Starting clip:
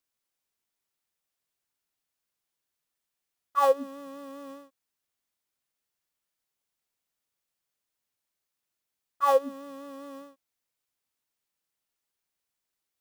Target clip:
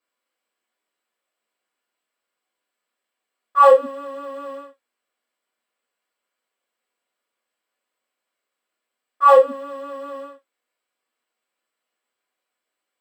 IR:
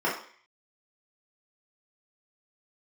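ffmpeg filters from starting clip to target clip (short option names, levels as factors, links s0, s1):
-filter_complex "[1:a]atrim=start_sample=2205,afade=t=out:st=0.19:d=0.01,atrim=end_sample=8820,asetrate=66150,aresample=44100[s0];[0:a][s0]afir=irnorm=-1:irlink=0,volume=0.891"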